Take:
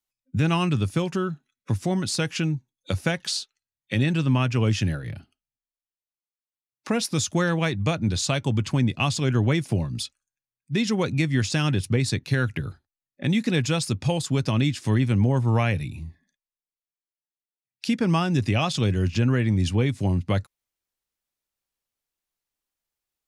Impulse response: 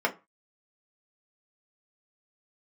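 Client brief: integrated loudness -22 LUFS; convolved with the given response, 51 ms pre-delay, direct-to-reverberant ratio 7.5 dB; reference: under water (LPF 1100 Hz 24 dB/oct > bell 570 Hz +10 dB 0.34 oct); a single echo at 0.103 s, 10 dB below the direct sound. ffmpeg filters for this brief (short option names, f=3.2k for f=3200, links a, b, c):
-filter_complex "[0:a]aecho=1:1:103:0.316,asplit=2[a][b];[1:a]atrim=start_sample=2205,adelay=51[c];[b][c]afir=irnorm=-1:irlink=0,volume=-19dB[d];[a][d]amix=inputs=2:normalize=0,lowpass=f=1.1k:w=0.5412,lowpass=f=1.1k:w=1.3066,equalizer=f=570:t=o:w=0.34:g=10,volume=1.5dB"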